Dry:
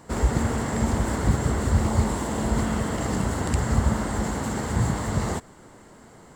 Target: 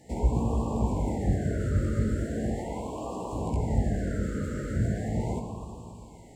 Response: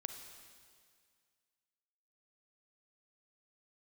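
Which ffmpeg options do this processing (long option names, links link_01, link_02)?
-filter_complex "[0:a]asettb=1/sr,asplit=3[link_01][link_02][link_03];[link_01]atrim=end=2.524[link_04];[link_02]atrim=start=2.52:end=3.33,asetpts=PTS-STARTPTS,afade=type=in:duration=0.004:curve=qsin,afade=type=out:start_time=0.806:duration=0.004:curve=qsin,highpass=350[link_05];[link_03]atrim=start=3.326[link_06];[link_04][link_05]acrossfade=duration=0.004:curve1=hsin:curve2=qsin[link_07];[link_07][link_06]acrossfade=duration=0.004:curve1=qsin:curve2=hsin,acrossover=split=1600[link_08][link_09];[link_09]acompressor=threshold=-49dB:ratio=5[link_10];[link_08][link_10]amix=inputs=2:normalize=0,flanger=delay=16:depth=5:speed=0.35[link_11];[1:a]atrim=start_sample=2205,asetrate=31311,aresample=44100[link_12];[link_11][link_12]afir=irnorm=-1:irlink=0,afftfilt=real='re*(1-between(b*sr/1024,850*pow(1700/850,0.5+0.5*sin(2*PI*0.39*pts/sr))/1.41,850*pow(1700/850,0.5+0.5*sin(2*PI*0.39*pts/sr))*1.41))':imag='im*(1-between(b*sr/1024,850*pow(1700/850,0.5+0.5*sin(2*PI*0.39*pts/sr))/1.41,850*pow(1700/850,0.5+0.5*sin(2*PI*0.39*pts/sr))*1.41))':win_size=1024:overlap=0.75"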